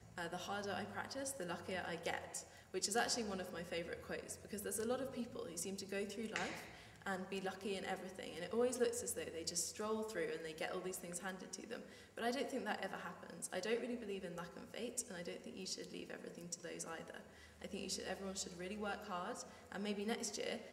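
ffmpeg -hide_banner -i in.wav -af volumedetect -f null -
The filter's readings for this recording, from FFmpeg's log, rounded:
mean_volume: -44.6 dB
max_volume: -22.6 dB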